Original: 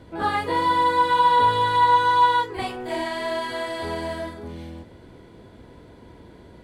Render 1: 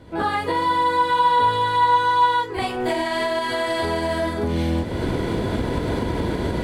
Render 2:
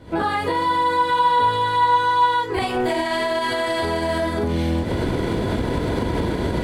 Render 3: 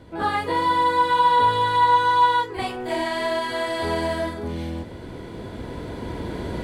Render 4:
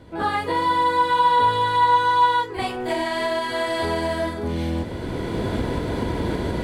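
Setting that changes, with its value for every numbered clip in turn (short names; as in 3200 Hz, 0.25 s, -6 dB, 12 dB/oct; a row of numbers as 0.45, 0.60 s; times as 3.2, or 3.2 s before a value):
recorder AGC, rising by: 36, 90, 5.3, 13 dB/s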